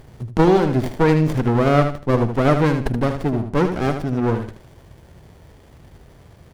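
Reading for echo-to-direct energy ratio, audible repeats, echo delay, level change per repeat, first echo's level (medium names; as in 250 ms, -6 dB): -7.5 dB, 3, 77 ms, -11.5 dB, -8.0 dB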